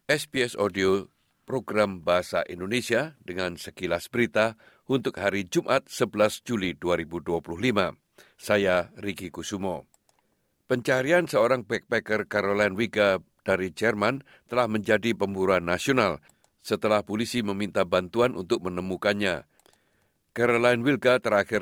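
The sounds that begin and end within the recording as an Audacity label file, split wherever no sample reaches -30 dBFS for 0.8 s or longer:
10.710000	19.400000	sound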